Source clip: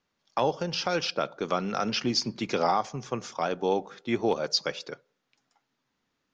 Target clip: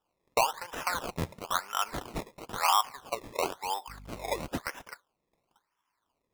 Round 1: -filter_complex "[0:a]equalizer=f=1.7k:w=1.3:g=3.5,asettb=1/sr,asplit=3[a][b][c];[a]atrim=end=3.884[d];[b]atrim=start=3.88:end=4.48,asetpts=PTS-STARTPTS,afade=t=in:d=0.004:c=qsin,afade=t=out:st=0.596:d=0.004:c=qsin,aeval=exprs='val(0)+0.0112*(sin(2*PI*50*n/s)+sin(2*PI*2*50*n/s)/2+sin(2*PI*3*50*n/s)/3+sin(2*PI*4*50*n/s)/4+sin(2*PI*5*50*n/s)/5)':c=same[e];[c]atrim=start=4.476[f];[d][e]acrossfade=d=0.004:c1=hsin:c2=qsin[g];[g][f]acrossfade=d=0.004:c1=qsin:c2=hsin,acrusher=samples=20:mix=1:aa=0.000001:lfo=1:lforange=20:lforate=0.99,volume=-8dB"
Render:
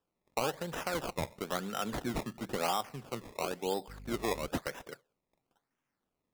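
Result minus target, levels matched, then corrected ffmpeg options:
1000 Hz band -3.0 dB
-filter_complex "[0:a]highpass=f=1k:t=q:w=5.8,equalizer=f=1.7k:w=1.3:g=3.5,asettb=1/sr,asplit=3[a][b][c];[a]atrim=end=3.884[d];[b]atrim=start=3.88:end=4.48,asetpts=PTS-STARTPTS,afade=t=in:d=0.004:c=qsin,afade=t=out:st=0.596:d=0.004:c=qsin,aeval=exprs='val(0)+0.0112*(sin(2*PI*50*n/s)+sin(2*PI*2*50*n/s)/2+sin(2*PI*3*50*n/s)/3+sin(2*PI*4*50*n/s)/4+sin(2*PI*5*50*n/s)/5)':c=same[e];[c]atrim=start=4.476[f];[d][e]acrossfade=d=0.004:c1=hsin:c2=qsin[g];[g][f]acrossfade=d=0.004:c1=qsin:c2=hsin,acrusher=samples=20:mix=1:aa=0.000001:lfo=1:lforange=20:lforate=0.99,volume=-8dB"

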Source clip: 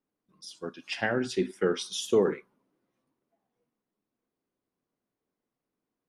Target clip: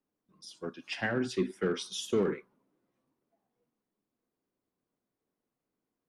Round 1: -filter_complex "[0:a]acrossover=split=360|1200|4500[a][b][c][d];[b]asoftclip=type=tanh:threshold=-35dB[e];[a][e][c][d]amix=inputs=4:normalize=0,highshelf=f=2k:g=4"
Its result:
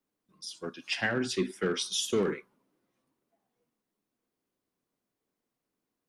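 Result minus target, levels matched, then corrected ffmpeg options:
4000 Hz band +4.5 dB
-filter_complex "[0:a]acrossover=split=360|1200|4500[a][b][c][d];[b]asoftclip=type=tanh:threshold=-35dB[e];[a][e][c][d]amix=inputs=4:normalize=0,highshelf=f=2k:g=-4.5"

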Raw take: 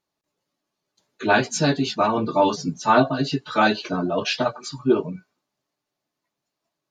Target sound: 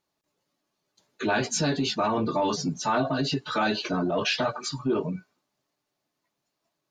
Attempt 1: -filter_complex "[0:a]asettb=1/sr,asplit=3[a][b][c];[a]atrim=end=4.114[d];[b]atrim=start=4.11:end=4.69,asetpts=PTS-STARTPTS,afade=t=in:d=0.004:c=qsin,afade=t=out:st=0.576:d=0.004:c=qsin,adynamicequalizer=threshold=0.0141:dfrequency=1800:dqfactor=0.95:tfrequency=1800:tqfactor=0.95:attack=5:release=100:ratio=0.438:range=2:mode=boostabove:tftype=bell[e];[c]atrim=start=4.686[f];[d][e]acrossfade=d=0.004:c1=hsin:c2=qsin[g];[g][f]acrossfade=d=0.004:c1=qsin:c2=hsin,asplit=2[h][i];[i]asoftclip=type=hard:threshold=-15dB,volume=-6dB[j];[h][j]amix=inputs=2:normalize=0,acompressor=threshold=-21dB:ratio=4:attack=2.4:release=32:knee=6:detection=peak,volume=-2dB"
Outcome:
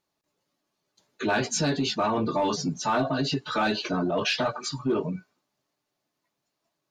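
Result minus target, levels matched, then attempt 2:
hard clip: distortion +30 dB
-filter_complex "[0:a]asettb=1/sr,asplit=3[a][b][c];[a]atrim=end=4.114[d];[b]atrim=start=4.11:end=4.69,asetpts=PTS-STARTPTS,afade=t=in:d=0.004:c=qsin,afade=t=out:st=0.576:d=0.004:c=qsin,adynamicequalizer=threshold=0.0141:dfrequency=1800:dqfactor=0.95:tfrequency=1800:tqfactor=0.95:attack=5:release=100:ratio=0.438:range=2:mode=boostabove:tftype=bell[e];[c]atrim=start=4.686[f];[d][e]acrossfade=d=0.004:c1=hsin:c2=qsin[g];[g][f]acrossfade=d=0.004:c1=qsin:c2=hsin,asplit=2[h][i];[i]asoftclip=type=hard:threshold=-6.5dB,volume=-6dB[j];[h][j]amix=inputs=2:normalize=0,acompressor=threshold=-21dB:ratio=4:attack=2.4:release=32:knee=6:detection=peak,volume=-2dB"

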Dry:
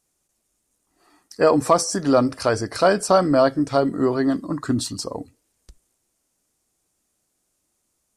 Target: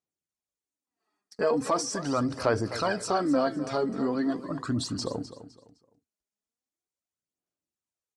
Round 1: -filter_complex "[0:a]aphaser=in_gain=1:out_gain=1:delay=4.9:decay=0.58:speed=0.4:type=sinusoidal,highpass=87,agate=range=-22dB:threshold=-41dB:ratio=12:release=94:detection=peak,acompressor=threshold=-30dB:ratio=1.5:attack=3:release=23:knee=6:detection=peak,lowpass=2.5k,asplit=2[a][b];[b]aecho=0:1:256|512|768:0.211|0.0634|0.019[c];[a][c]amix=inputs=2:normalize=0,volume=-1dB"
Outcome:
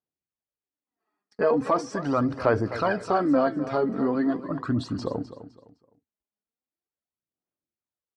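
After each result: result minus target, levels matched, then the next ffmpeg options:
8000 Hz band -15.0 dB; compressor: peak gain reduction -3.5 dB
-filter_complex "[0:a]aphaser=in_gain=1:out_gain=1:delay=4.9:decay=0.58:speed=0.4:type=sinusoidal,highpass=87,agate=range=-22dB:threshold=-41dB:ratio=12:release=94:detection=peak,acompressor=threshold=-30dB:ratio=1.5:attack=3:release=23:knee=6:detection=peak,lowpass=7.1k,asplit=2[a][b];[b]aecho=0:1:256|512|768:0.211|0.0634|0.019[c];[a][c]amix=inputs=2:normalize=0,volume=-1dB"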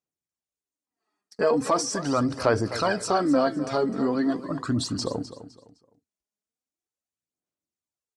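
compressor: peak gain reduction -3.5 dB
-filter_complex "[0:a]aphaser=in_gain=1:out_gain=1:delay=4.9:decay=0.58:speed=0.4:type=sinusoidal,highpass=87,agate=range=-22dB:threshold=-41dB:ratio=12:release=94:detection=peak,acompressor=threshold=-40dB:ratio=1.5:attack=3:release=23:knee=6:detection=peak,lowpass=7.1k,asplit=2[a][b];[b]aecho=0:1:256|512|768:0.211|0.0634|0.019[c];[a][c]amix=inputs=2:normalize=0,volume=-1dB"

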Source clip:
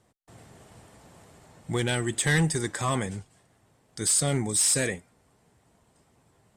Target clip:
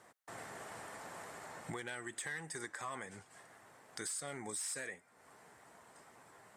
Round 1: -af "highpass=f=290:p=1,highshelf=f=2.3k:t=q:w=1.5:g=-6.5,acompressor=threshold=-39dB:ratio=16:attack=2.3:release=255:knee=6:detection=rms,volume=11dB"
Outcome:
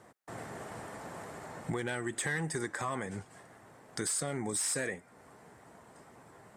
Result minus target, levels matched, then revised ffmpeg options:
compressor: peak gain reduction -6.5 dB; 250 Hz band +4.0 dB
-af "highpass=f=1.1k:p=1,highshelf=f=2.3k:t=q:w=1.5:g=-6.5,acompressor=threshold=-47.5dB:ratio=16:attack=2.3:release=255:knee=6:detection=rms,volume=11dB"

